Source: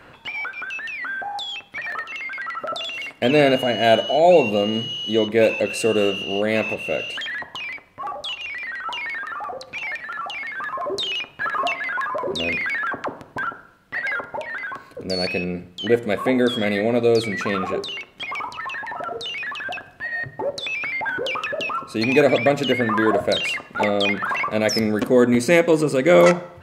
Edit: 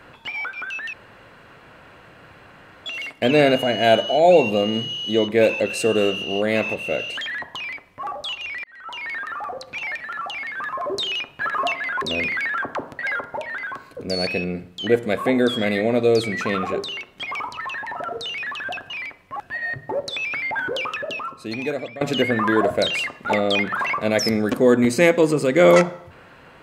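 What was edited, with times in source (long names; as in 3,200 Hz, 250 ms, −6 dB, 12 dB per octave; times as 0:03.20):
0:00.93–0:02.86: fill with room tone
0:07.57–0:08.07: duplicate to 0:19.90
0:08.64–0:09.16: fade in
0:12.02–0:12.31: remove
0:13.28–0:13.99: remove
0:21.18–0:22.51: fade out, to −20.5 dB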